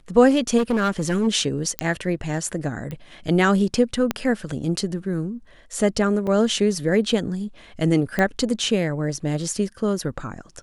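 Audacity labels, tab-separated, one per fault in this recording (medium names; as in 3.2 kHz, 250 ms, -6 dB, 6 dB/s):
0.570000	1.280000	clipped -16.5 dBFS
1.790000	1.790000	pop -6 dBFS
2.910000	2.910000	pop -20 dBFS
4.110000	4.110000	pop -7 dBFS
6.270000	6.270000	dropout 4.3 ms
8.190000	8.190000	pop -9 dBFS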